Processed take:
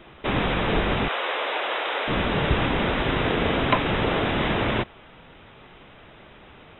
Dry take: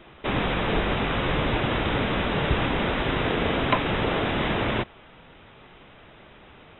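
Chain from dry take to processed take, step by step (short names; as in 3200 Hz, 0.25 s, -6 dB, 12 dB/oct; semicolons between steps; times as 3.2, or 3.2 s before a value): 1.08–2.08 HPF 480 Hz 24 dB/oct; gain +1.5 dB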